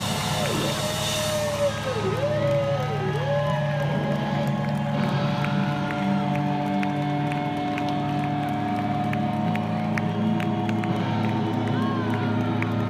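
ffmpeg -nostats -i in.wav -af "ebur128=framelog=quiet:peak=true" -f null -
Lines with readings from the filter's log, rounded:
Integrated loudness:
  I:         -24.9 LUFS
  Threshold: -34.9 LUFS
Loudness range:
  LRA:         1.0 LU
  Threshold: -44.9 LUFS
  LRA low:   -25.5 LUFS
  LRA high:  -24.5 LUFS
True peak:
  Peak:      -11.1 dBFS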